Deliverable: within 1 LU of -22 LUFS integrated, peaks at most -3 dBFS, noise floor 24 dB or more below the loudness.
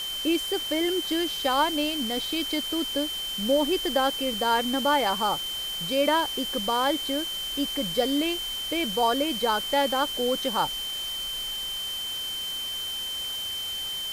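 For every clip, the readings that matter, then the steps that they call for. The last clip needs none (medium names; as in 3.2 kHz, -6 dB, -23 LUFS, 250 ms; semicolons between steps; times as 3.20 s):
steady tone 3.1 kHz; tone level -30 dBFS; noise floor -32 dBFS; noise floor target -50 dBFS; loudness -26.0 LUFS; peak level -10.5 dBFS; loudness target -22.0 LUFS
-> band-stop 3.1 kHz, Q 30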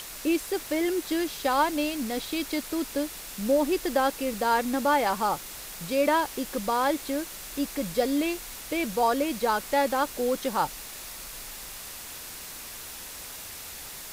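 steady tone not found; noise floor -41 dBFS; noise floor target -53 dBFS
-> noise print and reduce 12 dB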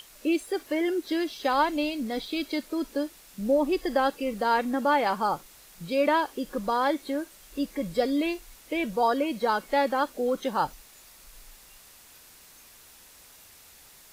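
noise floor -53 dBFS; loudness -27.5 LUFS; peak level -11.0 dBFS; loudness target -22.0 LUFS
-> trim +5.5 dB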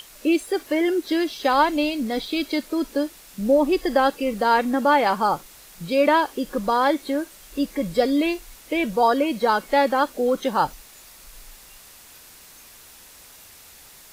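loudness -22.0 LUFS; peak level -5.5 dBFS; noise floor -47 dBFS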